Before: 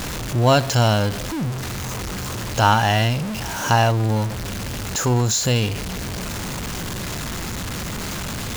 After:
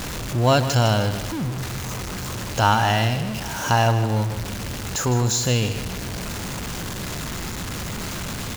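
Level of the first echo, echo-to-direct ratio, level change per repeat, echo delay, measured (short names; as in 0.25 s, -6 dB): -11.0 dB, -10.5 dB, -7.5 dB, 0.157 s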